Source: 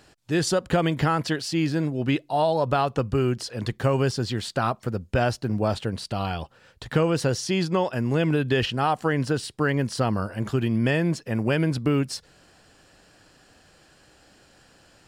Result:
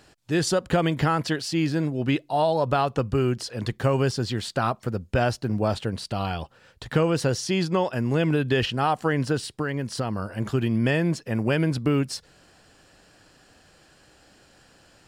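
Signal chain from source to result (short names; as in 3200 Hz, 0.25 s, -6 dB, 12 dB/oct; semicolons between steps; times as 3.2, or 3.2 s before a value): 9.47–10.38 compressor 3:1, threshold -25 dBFS, peak gain reduction 5.5 dB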